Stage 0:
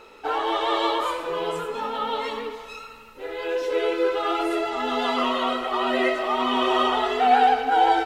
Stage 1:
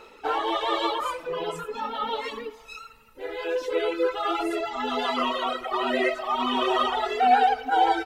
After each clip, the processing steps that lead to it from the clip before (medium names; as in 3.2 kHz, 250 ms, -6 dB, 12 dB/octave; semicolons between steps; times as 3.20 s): reverb removal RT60 1.8 s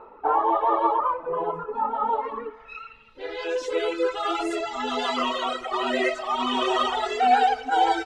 low-pass sweep 1 kHz -> 7.5 kHz, 2.28–3.58 s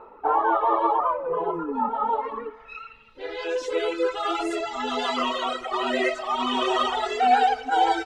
painted sound fall, 0.44–1.89 s, 220–1600 Hz -32 dBFS